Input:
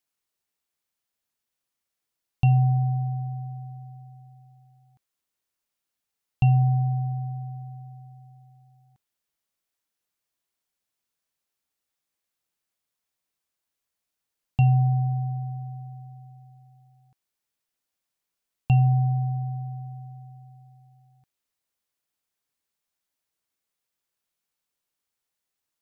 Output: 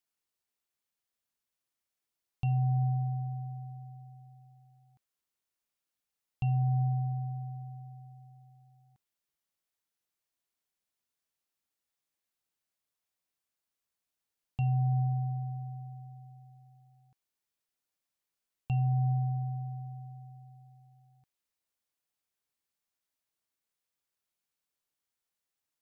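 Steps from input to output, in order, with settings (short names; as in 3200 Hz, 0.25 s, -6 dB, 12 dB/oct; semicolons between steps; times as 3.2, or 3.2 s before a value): limiter -18.5 dBFS, peak gain reduction 7.5 dB; gain -4.5 dB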